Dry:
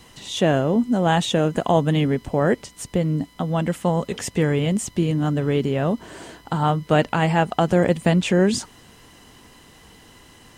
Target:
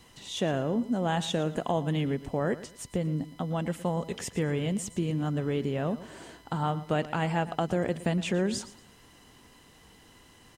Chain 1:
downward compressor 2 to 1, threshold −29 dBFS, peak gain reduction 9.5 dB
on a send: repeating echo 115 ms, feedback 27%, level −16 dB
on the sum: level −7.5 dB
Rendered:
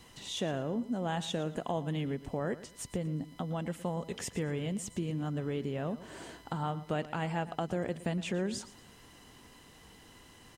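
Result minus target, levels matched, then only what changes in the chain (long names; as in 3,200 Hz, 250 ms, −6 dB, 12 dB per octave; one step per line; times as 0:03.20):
downward compressor: peak gain reduction +5.5 dB
change: downward compressor 2 to 1, threshold −17.5 dBFS, peak gain reduction 4 dB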